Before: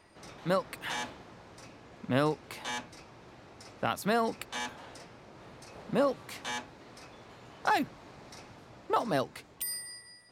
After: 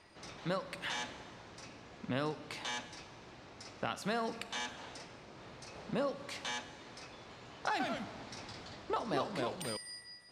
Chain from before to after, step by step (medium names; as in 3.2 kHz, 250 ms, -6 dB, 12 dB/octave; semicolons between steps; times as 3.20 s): treble shelf 3.2 kHz +11.5 dB; compression 2:1, threshold -34 dBFS, peak gain reduction 7.5 dB; Schroeder reverb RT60 1.6 s, combs from 31 ms, DRR 12 dB; 7.71–9.77 s: ever faster or slower copies 88 ms, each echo -2 st, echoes 2; distance through air 95 m; trim -2 dB